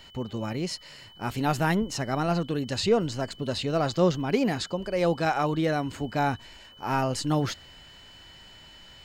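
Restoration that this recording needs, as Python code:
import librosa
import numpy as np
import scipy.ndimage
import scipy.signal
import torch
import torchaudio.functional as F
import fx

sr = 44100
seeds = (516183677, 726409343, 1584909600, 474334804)

y = fx.notch(x, sr, hz=3000.0, q=30.0)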